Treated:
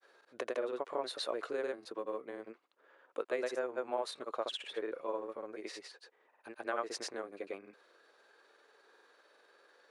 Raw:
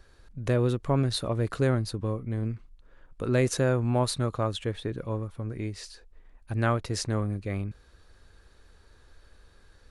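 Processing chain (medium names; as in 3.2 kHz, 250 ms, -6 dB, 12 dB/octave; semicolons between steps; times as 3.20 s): granulator, grains 20 per s, pitch spread up and down by 0 st; compression 10:1, threshold -29 dBFS, peak gain reduction 9.5 dB; high-pass 400 Hz 24 dB/octave; treble shelf 4.3 kHz -11.5 dB; trim +2 dB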